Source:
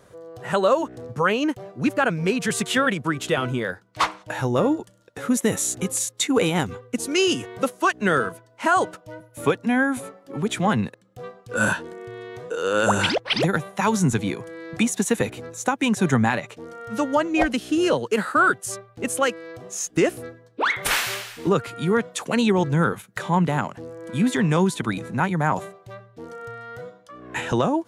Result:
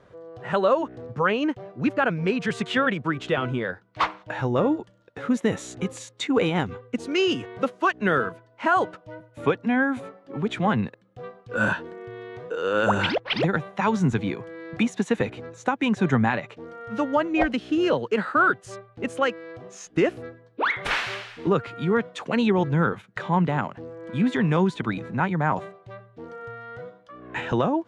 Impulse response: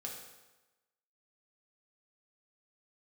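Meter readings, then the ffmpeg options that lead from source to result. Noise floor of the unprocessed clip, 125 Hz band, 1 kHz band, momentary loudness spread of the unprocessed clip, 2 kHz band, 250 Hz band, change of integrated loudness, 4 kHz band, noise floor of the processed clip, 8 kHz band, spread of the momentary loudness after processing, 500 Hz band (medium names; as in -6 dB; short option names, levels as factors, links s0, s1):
-55 dBFS, -1.5 dB, -1.5 dB, 17 LU, -2.0 dB, -1.5 dB, -2.0 dB, -4.5 dB, -56 dBFS, -16.0 dB, 17 LU, -1.5 dB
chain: -af "lowpass=3400,volume=0.841"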